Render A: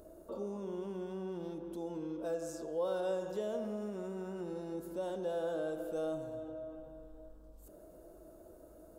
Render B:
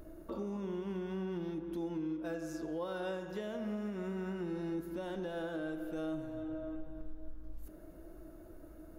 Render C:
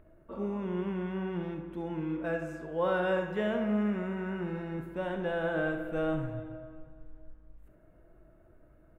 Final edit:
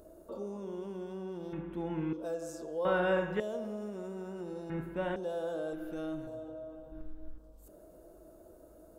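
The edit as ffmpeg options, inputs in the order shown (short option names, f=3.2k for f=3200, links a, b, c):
-filter_complex "[2:a]asplit=3[a][b][c];[1:a]asplit=2[d][e];[0:a]asplit=6[f][g][h][i][j][k];[f]atrim=end=1.532[l];[a]atrim=start=1.528:end=2.132[m];[g]atrim=start=2.128:end=2.852[n];[b]atrim=start=2.848:end=3.402[o];[h]atrim=start=3.398:end=4.702[p];[c]atrim=start=4.698:end=5.162[q];[i]atrim=start=5.158:end=5.732[r];[d]atrim=start=5.728:end=6.272[s];[j]atrim=start=6.268:end=6.922[t];[e]atrim=start=6.918:end=7.382[u];[k]atrim=start=7.378[v];[l][m]acrossfade=d=0.004:c1=hsin:c2=hsin[w];[w][n]acrossfade=d=0.004:c1=hsin:c2=hsin[x];[x][o]acrossfade=d=0.004:c1=hsin:c2=hsin[y];[y][p]acrossfade=d=0.004:c1=hsin:c2=hsin[z];[z][q]acrossfade=d=0.004:c1=hsin:c2=hsin[aa];[aa][r]acrossfade=d=0.004:c1=hsin:c2=hsin[ab];[ab][s]acrossfade=d=0.004:c1=hsin:c2=hsin[ac];[ac][t]acrossfade=d=0.004:c1=hsin:c2=hsin[ad];[ad][u]acrossfade=d=0.004:c1=hsin:c2=hsin[ae];[ae][v]acrossfade=d=0.004:c1=hsin:c2=hsin"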